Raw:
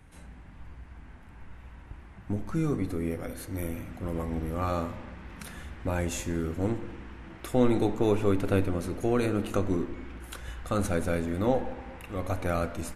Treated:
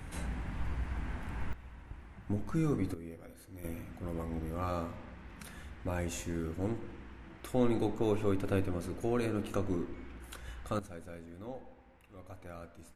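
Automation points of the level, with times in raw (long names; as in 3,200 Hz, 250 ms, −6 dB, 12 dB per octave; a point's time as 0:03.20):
+9.5 dB
from 0:01.53 −3 dB
from 0:02.94 −14.5 dB
from 0:03.64 −6 dB
from 0:10.79 −18.5 dB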